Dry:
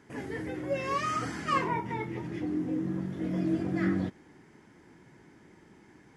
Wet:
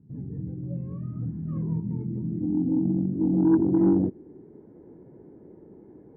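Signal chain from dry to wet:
low-pass filter sweep 160 Hz → 480 Hz, 0:01.42–0:04.78
harmonic generator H 5 −23 dB, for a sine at −12 dBFS
level +2 dB

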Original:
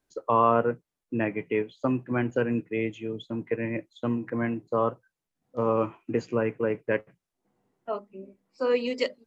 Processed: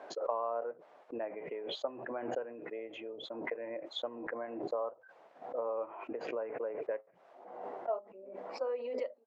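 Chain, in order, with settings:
downward compressor 6 to 1, threshold −28 dBFS, peak gain reduction 12 dB
four-pole ladder band-pass 720 Hz, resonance 50%
background raised ahead of every attack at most 48 dB per second
level +5.5 dB

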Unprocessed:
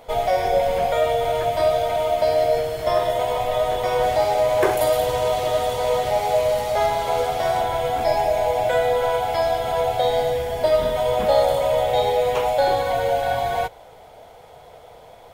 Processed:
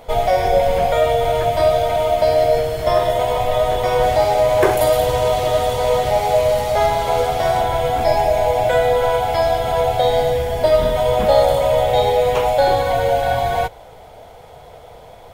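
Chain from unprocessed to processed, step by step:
low-shelf EQ 150 Hz +7 dB
level +3.5 dB

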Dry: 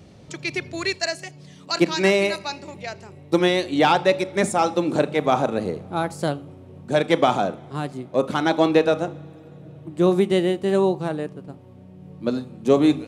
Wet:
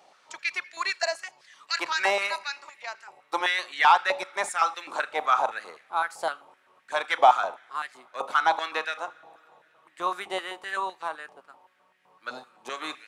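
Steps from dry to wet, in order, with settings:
sub-octave generator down 1 octave, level −5 dB
high-pass on a step sequencer 7.8 Hz 820–1,800 Hz
level −5 dB

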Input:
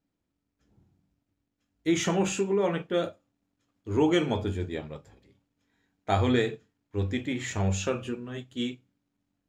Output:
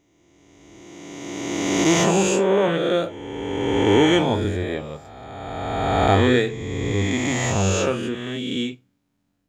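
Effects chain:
peak hold with a rise ahead of every peak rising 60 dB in 2.29 s
level +4 dB

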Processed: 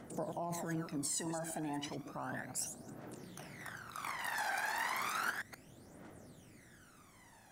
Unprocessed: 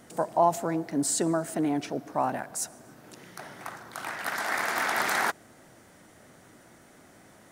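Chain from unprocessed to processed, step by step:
delay that plays each chunk backwards 126 ms, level −10 dB
brickwall limiter −22 dBFS, peak gain reduction 10.5 dB
phase shifter 0.33 Hz, delay 1.3 ms, feedback 71%
level −8.5 dB

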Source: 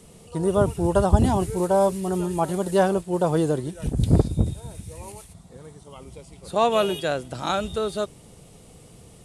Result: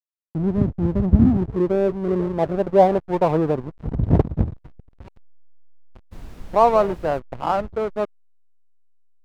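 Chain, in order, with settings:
low-pass filter sweep 250 Hz → 960 Hz, 0:01.24–0:03.16
slack as between gear wheels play −23.5 dBFS
0:06.11–0:07.18: background noise brown −36 dBFS
level +1 dB

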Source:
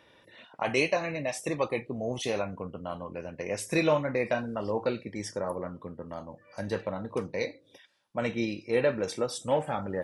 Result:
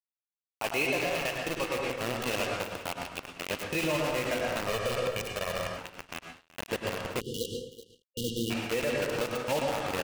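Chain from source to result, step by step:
one scale factor per block 3 bits
0:02.38–0:02.92: notch filter 1,100 Hz, Q 10
bit reduction 5 bits
single-tap delay 376 ms −16 dB
convolution reverb RT60 0.95 s, pre-delay 92 ms, DRR 1 dB
dead-zone distortion −47.5 dBFS
0:04.67–0:05.78: comb filter 1.7 ms, depth 68%
0:07.20–0:08.51: time-frequency box erased 520–2,800 Hz
brickwall limiter −21 dBFS, peak gain reduction 10 dB
parametric band 2,700 Hz +8.5 dB 0.27 octaves

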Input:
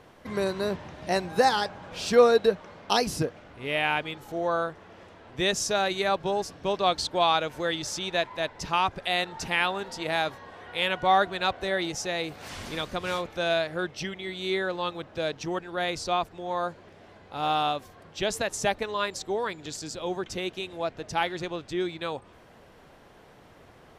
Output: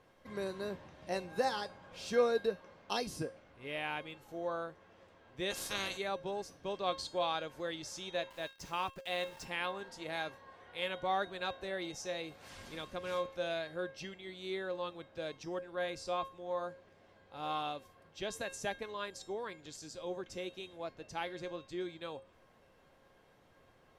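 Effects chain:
0:05.50–0:05.96: ceiling on every frequency bin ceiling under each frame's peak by 26 dB
dynamic equaliser 320 Hz, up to +3 dB, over −38 dBFS, Q 1
0:08.30–0:09.45: centre clipping without the shift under −39.5 dBFS
tuned comb filter 540 Hz, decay 0.33 s, mix 80%

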